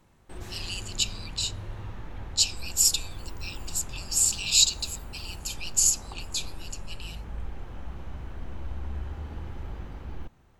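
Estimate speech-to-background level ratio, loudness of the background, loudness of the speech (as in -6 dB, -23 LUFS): 16.5 dB, -41.5 LUFS, -25.0 LUFS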